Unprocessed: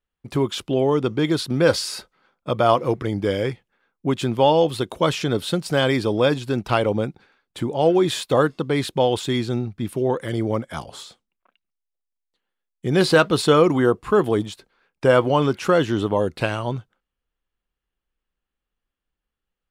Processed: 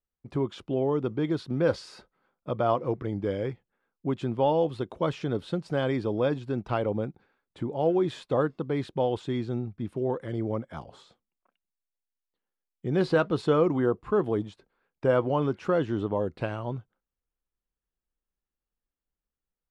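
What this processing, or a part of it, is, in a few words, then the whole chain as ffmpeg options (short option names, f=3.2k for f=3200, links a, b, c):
through cloth: -af "lowpass=7.4k,highshelf=f=2.1k:g=-13,volume=-6.5dB"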